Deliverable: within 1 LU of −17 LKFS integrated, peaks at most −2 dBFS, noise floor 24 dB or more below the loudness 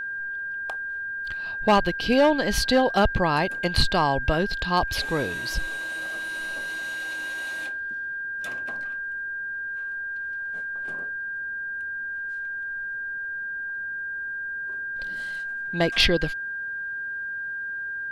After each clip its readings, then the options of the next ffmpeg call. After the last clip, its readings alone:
interfering tone 1,600 Hz; level of the tone −29 dBFS; integrated loudness −26.5 LKFS; sample peak −10.0 dBFS; target loudness −17.0 LKFS
→ -af "bandreject=frequency=1600:width=30"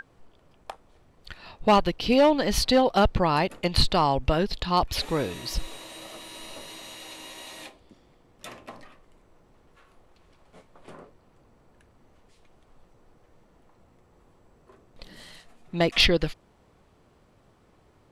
interfering tone none found; integrated loudness −23.5 LKFS; sample peak −10.5 dBFS; target loudness −17.0 LKFS
→ -af "volume=6.5dB"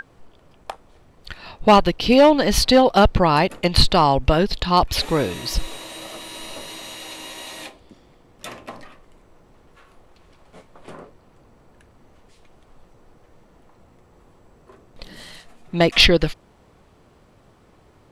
integrated loudness −17.0 LKFS; sample peak −4.0 dBFS; background noise floor −55 dBFS

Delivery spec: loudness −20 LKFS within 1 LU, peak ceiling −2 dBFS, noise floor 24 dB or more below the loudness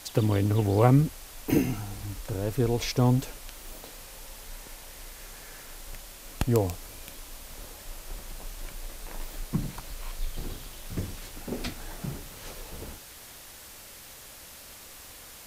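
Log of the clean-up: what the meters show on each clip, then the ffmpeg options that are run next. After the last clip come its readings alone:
background noise floor −47 dBFS; target noise floor −53 dBFS; integrated loudness −29.0 LKFS; sample peak −5.5 dBFS; target loudness −20.0 LKFS
→ -af "afftdn=noise_reduction=6:noise_floor=-47"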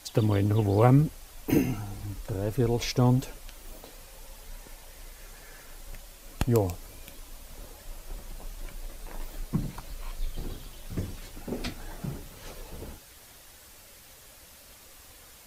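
background noise floor −52 dBFS; target noise floor −53 dBFS
→ -af "afftdn=noise_reduction=6:noise_floor=-52"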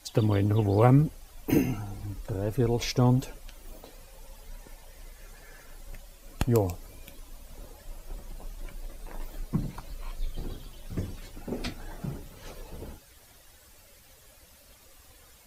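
background noise floor −56 dBFS; integrated loudness −28.5 LKFS; sample peak −5.5 dBFS; target loudness −20.0 LKFS
→ -af "volume=8.5dB,alimiter=limit=-2dB:level=0:latency=1"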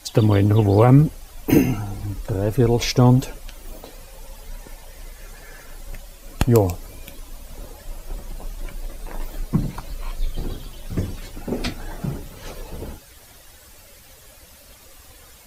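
integrated loudness −20.0 LKFS; sample peak −2.0 dBFS; background noise floor −47 dBFS

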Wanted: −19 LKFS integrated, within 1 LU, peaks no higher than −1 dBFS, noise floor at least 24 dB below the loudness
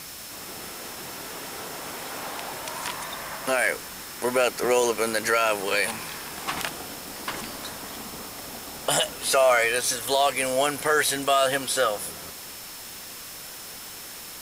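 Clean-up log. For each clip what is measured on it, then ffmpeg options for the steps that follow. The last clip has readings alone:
interfering tone 5,300 Hz; level of the tone −48 dBFS; background noise floor −40 dBFS; target noise floor −50 dBFS; integrated loudness −25.5 LKFS; sample peak −9.0 dBFS; target loudness −19.0 LKFS
→ -af "bandreject=frequency=5300:width=30"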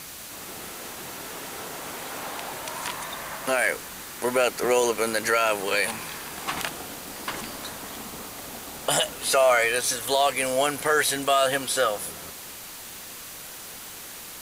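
interfering tone none found; background noise floor −40 dBFS; target noise floor −50 dBFS
→ -af "afftdn=noise_reduction=10:noise_floor=-40"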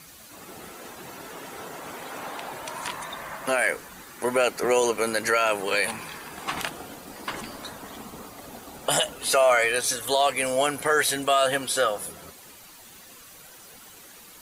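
background noise floor −48 dBFS; target noise floor −49 dBFS
→ -af "afftdn=noise_reduction=6:noise_floor=-48"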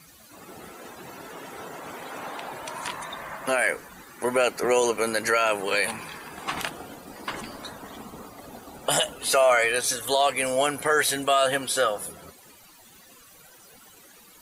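background noise floor −52 dBFS; integrated loudness −25.0 LKFS; sample peak −9.0 dBFS; target loudness −19.0 LKFS
→ -af "volume=6dB"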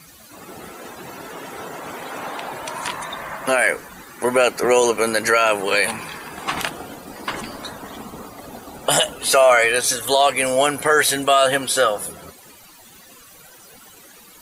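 integrated loudness −19.0 LKFS; sample peak −3.0 dBFS; background noise floor −46 dBFS

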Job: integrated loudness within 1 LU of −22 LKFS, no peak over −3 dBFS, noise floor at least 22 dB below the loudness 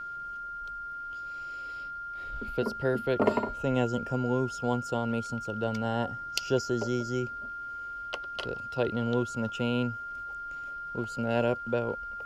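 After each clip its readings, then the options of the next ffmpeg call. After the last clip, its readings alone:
interfering tone 1,400 Hz; level of the tone −36 dBFS; integrated loudness −32.0 LKFS; sample peak −9.5 dBFS; target loudness −22.0 LKFS
→ -af "bandreject=frequency=1400:width=30"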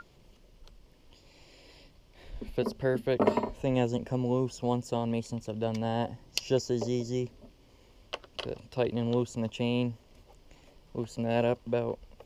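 interfering tone none found; integrated loudness −31.5 LKFS; sample peak −9.0 dBFS; target loudness −22.0 LKFS
→ -af "volume=9.5dB,alimiter=limit=-3dB:level=0:latency=1"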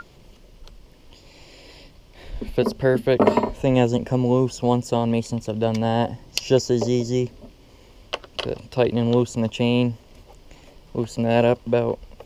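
integrated loudness −22.0 LKFS; sample peak −3.0 dBFS; background noise floor −50 dBFS

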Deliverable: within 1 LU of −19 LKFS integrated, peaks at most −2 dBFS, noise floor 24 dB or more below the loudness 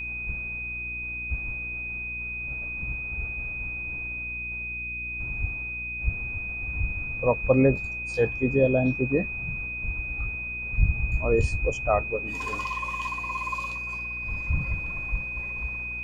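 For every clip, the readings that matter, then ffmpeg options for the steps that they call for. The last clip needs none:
mains hum 60 Hz; hum harmonics up to 360 Hz; level of the hum −39 dBFS; interfering tone 2,500 Hz; level of the tone −31 dBFS; integrated loudness −28.0 LKFS; sample peak −8.0 dBFS; target loudness −19.0 LKFS
→ -af "bandreject=frequency=60:width_type=h:width=4,bandreject=frequency=120:width_type=h:width=4,bandreject=frequency=180:width_type=h:width=4,bandreject=frequency=240:width_type=h:width=4,bandreject=frequency=300:width_type=h:width=4,bandreject=frequency=360:width_type=h:width=4"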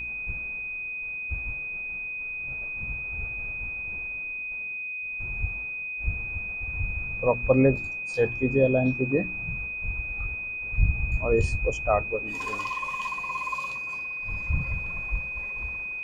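mains hum none found; interfering tone 2,500 Hz; level of the tone −31 dBFS
→ -af "bandreject=frequency=2500:width=30"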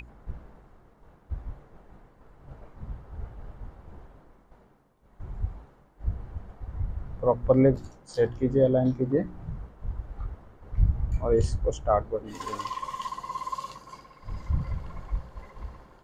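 interfering tone none found; integrated loudness −29.0 LKFS; sample peak −8.5 dBFS; target loudness −19.0 LKFS
→ -af "volume=10dB,alimiter=limit=-2dB:level=0:latency=1"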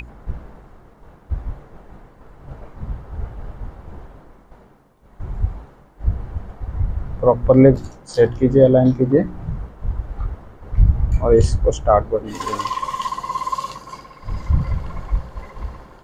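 integrated loudness −19.0 LKFS; sample peak −2.0 dBFS; background noise floor −48 dBFS

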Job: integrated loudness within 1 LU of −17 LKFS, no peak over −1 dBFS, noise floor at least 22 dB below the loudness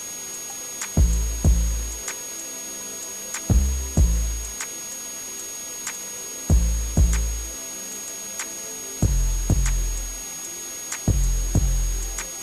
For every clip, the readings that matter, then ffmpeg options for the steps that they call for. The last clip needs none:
interfering tone 6,600 Hz; level of the tone −32 dBFS; background noise floor −34 dBFS; target noise floor −48 dBFS; integrated loudness −25.5 LKFS; sample peak −9.5 dBFS; target loudness −17.0 LKFS
→ -af "bandreject=frequency=6600:width=30"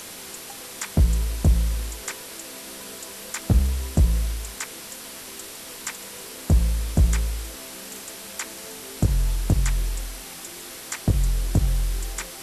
interfering tone none found; background noise floor −39 dBFS; target noise floor −49 dBFS
→ -af "afftdn=noise_reduction=10:noise_floor=-39"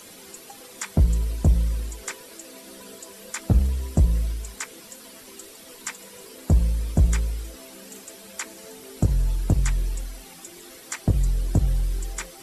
background noise floor −45 dBFS; target noise floor −48 dBFS
→ -af "afftdn=noise_reduction=6:noise_floor=-45"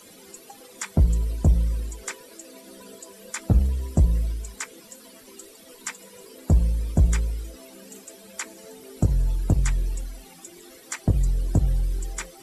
background noise floor −49 dBFS; integrated loudness −25.5 LKFS; sample peak −10.5 dBFS; target loudness −17.0 LKFS
→ -af "volume=8.5dB"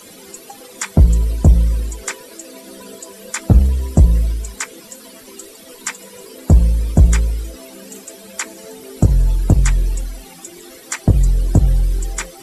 integrated loudness −17.0 LKFS; sample peak −2.0 dBFS; background noise floor −40 dBFS

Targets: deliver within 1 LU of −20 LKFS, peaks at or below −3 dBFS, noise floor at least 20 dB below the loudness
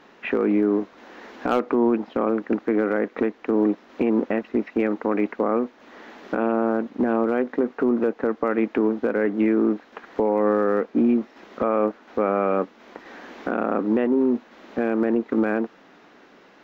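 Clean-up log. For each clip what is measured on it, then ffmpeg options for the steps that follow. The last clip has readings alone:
integrated loudness −23.5 LKFS; sample peak −11.5 dBFS; target loudness −20.0 LKFS
→ -af "volume=3.5dB"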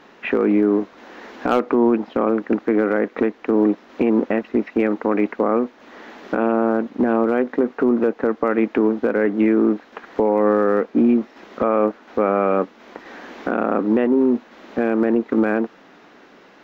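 integrated loudness −20.0 LKFS; sample peak −8.0 dBFS; background noise floor −49 dBFS

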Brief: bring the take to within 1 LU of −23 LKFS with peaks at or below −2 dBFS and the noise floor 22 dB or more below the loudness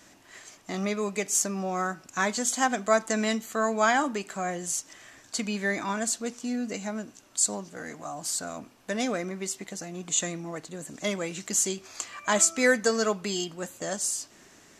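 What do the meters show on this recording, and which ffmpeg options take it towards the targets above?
integrated loudness −28.0 LKFS; sample peak −7.5 dBFS; target loudness −23.0 LKFS
→ -af "volume=5dB"

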